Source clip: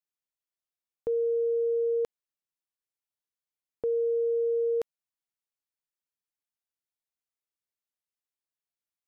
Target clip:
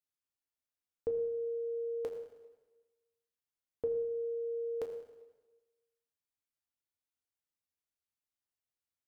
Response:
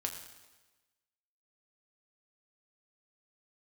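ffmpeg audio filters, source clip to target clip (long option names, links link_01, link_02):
-filter_complex "[0:a]lowshelf=frequency=240:gain=5.5[link_01];[1:a]atrim=start_sample=2205[link_02];[link_01][link_02]afir=irnorm=-1:irlink=0,volume=-4.5dB"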